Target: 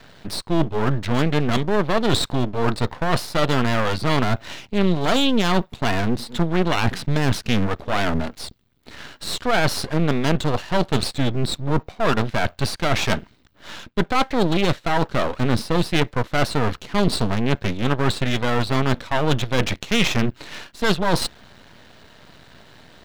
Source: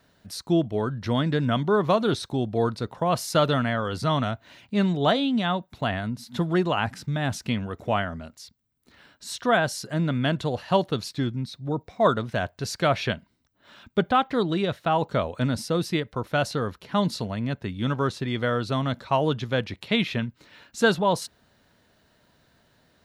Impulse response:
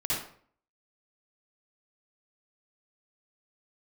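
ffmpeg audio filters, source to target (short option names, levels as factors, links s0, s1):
-af "apsyclip=3.98,areverse,acompressor=threshold=0.126:ratio=20,areverse,highshelf=f=5200:t=q:w=1.5:g=-9.5,aeval=exprs='max(val(0),0)':c=same,volume=2.11"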